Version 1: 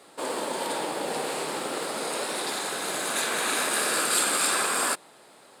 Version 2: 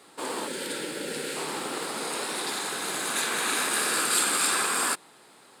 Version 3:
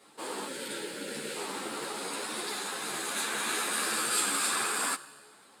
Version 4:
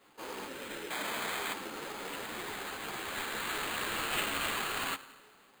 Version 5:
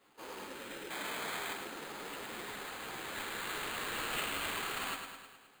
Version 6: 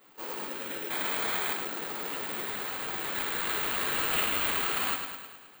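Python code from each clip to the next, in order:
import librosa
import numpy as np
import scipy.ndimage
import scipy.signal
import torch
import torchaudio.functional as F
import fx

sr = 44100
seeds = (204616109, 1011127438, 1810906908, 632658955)

y1 = fx.spec_box(x, sr, start_s=0.47, length_s=0.89, low_hz=610.0, high_hz=1300.0, gain_db=-13)
y1 = fx.peak_eq(y1, sr, hz=600.0, db=-7.0, octaves=0.55)
y2 = fx.comb_fb(y1, sr, f0_hz=71.0, decay_s=1.6, harmonics='all', damping=0.0, mix_pct=50)
y2 = fx.ensemble(y2, sr)
y2 = y2 * 10.0 ** (4.0 / 20.0)
y3 = fx.spec_paint(y2, sr, seeds[0], shape='noise', start_s=0.9, length_s=0.64, low_hz=600.0, high_hz=2600.0, level_db=-33.0)
y3 = fx.rev_spring(y3, sr, rt60_s=1.5, pass_ms=(33,), chirp_ms=75, drr_db=17.0)
y3 = fx.sample_hold(y3, sr, seeds[1], rate_hz=5600.0, jitter_pct=0)
y3 = y3 * 10.0 ** (-4.5 / 20.0)
y4 = fx.echo_feedback(y3, sr, ms=105, feedback_pct=59, wet_db=-7)
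y4 = y4 * 10.0 ** (-4.5 / 20.0)
y5 = (np.kron(scipy.signal.resample_poly(y4, 1, 2), np.eye(2)[0]) * 2)[:len(y4)]
y5 = y5 * 10.0 ** (6.0 / 20.0)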